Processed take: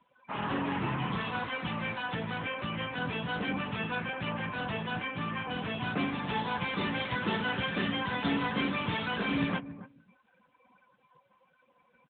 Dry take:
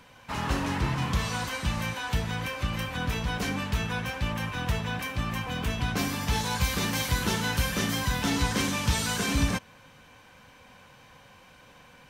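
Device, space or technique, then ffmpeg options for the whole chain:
mobile call with aggressive noise cancelling: -filter_complex "[0:a]highpass=160,asplit=2[link_01][link_02];[link_02]adelay=276,lowpass=frequency=1200:poles=1,volume=-13dB,asplit=2[link_03][link_04];[link_04]adelay=276,lowpass=frequency=1200:poles=1,volume=0.18[link_05];[link_01][link_03][link_05]amix=inputs=3:normalize=0,afftdn=noise_reduction=20:noise_floor=-44" -ar 8000 -c:a libopencore_amrnb -b:a 10200

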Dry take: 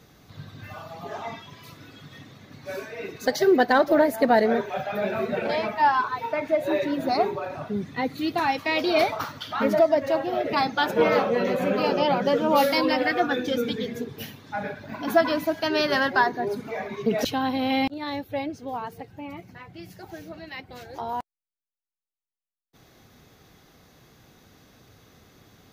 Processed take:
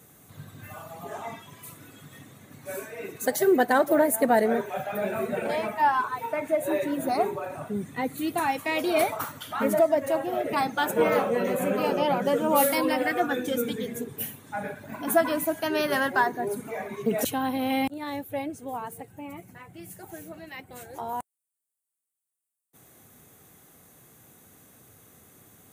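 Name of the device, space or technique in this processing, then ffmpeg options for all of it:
budget condenser microphone: -af "highpass=81,highshelf=frequency=6600:width_type=q:width=3:gain=11,volume=-2dB"

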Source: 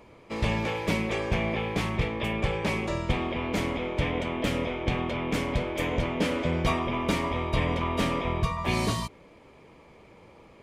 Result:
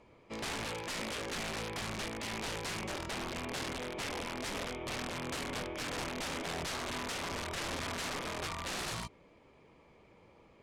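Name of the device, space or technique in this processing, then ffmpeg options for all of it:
overflowing digital effects unit: -af "aeval=exprs='(mod(15*val(0)+1,2)-1)/15':channel_layout=same,lowpass=9000,volume=-8.5dB"

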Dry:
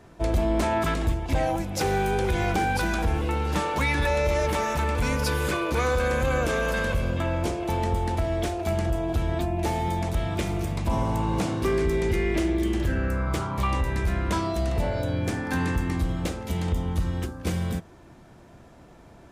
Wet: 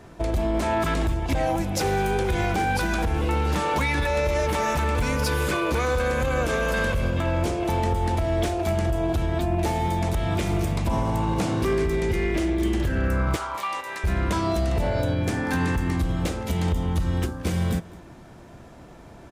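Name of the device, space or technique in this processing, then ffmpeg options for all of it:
limiter into clipper: -filter_complex "[0:a]alimiter=limit=-19dB:level=0:latency=1:release=151,asoftclip=type=hard:threshold=-21dB,asettb=1/sr,asplit=3[link_01][link_02][link_03];[link_01]atrim=end=13.364[link_04];[link_02]atrim=start=13.36:end=14.04,asetpts=PTS-STARTPTS,afade=type=in:duration=0.004:curve=qsin,afade=type=out:start_time=0.676:duration=0.004:curve=qsin,highpass=720[link_05];[link_03]atrim=start=14.036[link_06];[link_04][link_05]acrossfade=duration=0.004:curve1=hsin:curve2=qsin[link_07];[link_07][link_06]acrossfade=duration=0.004:curve1=qsin:curve2=hsin,aecho=1:1:208:0.0841,volume=4.5dB"

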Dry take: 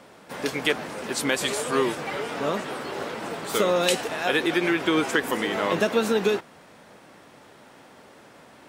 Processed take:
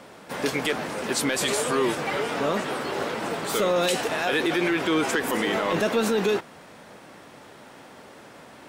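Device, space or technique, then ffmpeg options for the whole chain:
soft clipper into limiter: -af "asoftclip=type=tanh:threshold=-12.5dB,alimiter=limit=-19dB:level=0:latency=1:release=16,volume=3.5dB"

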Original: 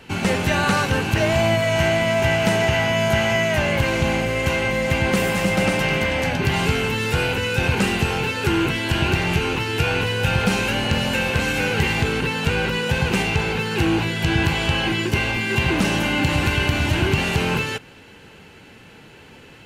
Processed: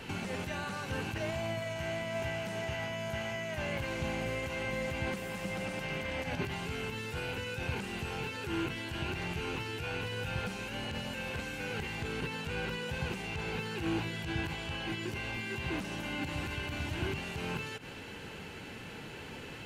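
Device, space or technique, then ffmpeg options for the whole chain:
de-esser from a sidechain: -filter_complex "[0:a]asplit=2[link_01][link_02];[link_02]highpass=5900,apad=whole_len=866733[link_03];[link_01][link_03]sidechaincompress=threshold=-50dB:ratio=10:attack=0.7:release=77"

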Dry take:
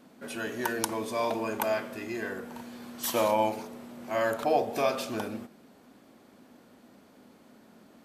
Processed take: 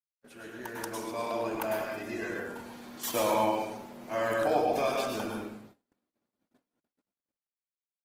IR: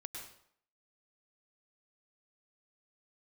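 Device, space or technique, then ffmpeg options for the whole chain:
speakerphone in a meeting room: -filter_complex "[1:a]atrim=start_sample=2205[link_01];[0:a][link_01]afir=irnorm=-1:irlink=0,dynaudnorm=framelen=200:gausssize=9:maxgain=9.5dB,agate=range=-45dB:threshold=-45dB:ratio=16:detection=peak,volume=-7dB" -ar 48000 -c:a libopus -b:a 16k

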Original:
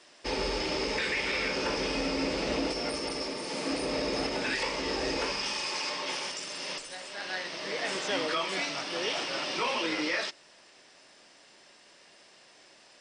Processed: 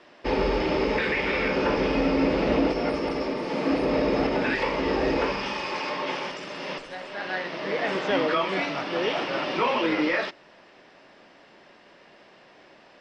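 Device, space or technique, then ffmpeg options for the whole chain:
phone in a pocket: -af "lowpass=3400,equalizer=frequency=200:width_type=o:width=0.77:gain=2,highshelf=frequency=2200:gain=-8.5,volume=8.5dB"

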